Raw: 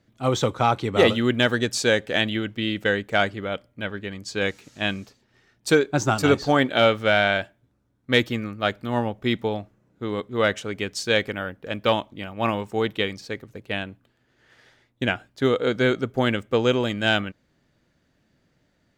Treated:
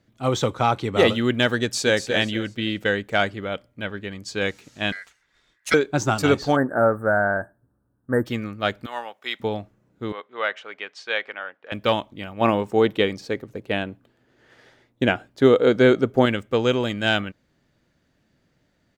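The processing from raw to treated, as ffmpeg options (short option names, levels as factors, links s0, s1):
-filter_complex "[0:a]asplit=2[s0][s1];[s1]afade=t=in:st=1.62:d=0.01,afade=t=out:st=2.05:d=0.01,aecho=0:1:240|480|720|960:0.375837|0.112751|0.0338254|0.0101476[s2];[s0][s2]amix=inputs=2:normalize=0,asettb=1/sr,asplit=3[s3][s4][s5];[s3]atrim=end=4.924[s6];[s4]atrim=start=4.92:end=5.74,asetpts=PTS-STARTPTS,afade=t=in:d=0.004:c=qsin,afade=t=out:st=0.816:d=0.004:c=qsin,aeval=exprs='val(0)*sin(2*PI*1800*n/s)':c=same[s7];[s5]atrim=start=5.736[s8];[s6][s7]acrossfade=d=0.004:c1=hsin:c2=qsin[s9];[s9][s8]acrossfade=d=0.004:c1=qsin:c2=hsin,asplit=3[s10][s11][s12];[s10]afade=t=out:st=6.55:d=0.02[s13];[s11]asuperstop=centerf=3900:order=20:qfactor=0.61,afade=t=in:st=6.55:d=0.02,afade=t=out:st=8.25:d=0.02[s14];[s12]afade=t=in:st=8.25:d=0.02[s15];[s13][s14][s15]amix=inputs=3:normalize=0,asettb=1/sr,asplit=3[s16][s17][s18];[s16]atrim=end=8.864[s19];[s17]atrim=start=8.86:end=9.4,asetpts=PTS-STARTPTS,afade=t=in:d=0.004:c=qsin,afade=t=out:st=0.536:d=0.004:c=qsin,highpass=890[s20];[s18]atrim=start=9.396[s21];[s19][s20]acrossfade=d=0.004:c1=hsin:c2=qsin[s22];[s22][s21]acrossfade=d=0.004:c1=qsin:c2=hsin,asettb=1/sr,asplit=3[s23][s24][s25];[s23]atrim=end=10.124[s26];[s24]atrim=start=10.12:end=11.72,asetpts=PTS-STARTPTS,afade=t=in:d=0.004:c=qsin,afade=t=out:st=1.596:d=0.004:c=qsin,highpass=760,lowpass=2700[s27];[s25]atrim=start=11.716[s28];[s26][s27]acrossfade=d=0.004:c1=hsin:c2=qsin[s29];[s29][s28]acrossfade=d=0.004:c1=qsin:c2=hsin,asettb=1/sr,asplit=3[s30][s31][s32];[s30]atrim=end=12.414[s33];[s31]atrim=start=12.41:end=16.26,asetpts=PTS-STARTPTS,afade=t=in:d=0.004:c=qsin,afade=t=out:st=3.846:d=0.004:c=qsin,equalizer=f=410:t=o:w=2.7:g=6.5[s34];[s32]atrim=start=16.256[s35];[s33][s34]acrossfade=d=0.004:c1=hsin:c2=qsin[s36];[s36][s35]acrossfade=d=0.004:c1=qsin:c2=hsin"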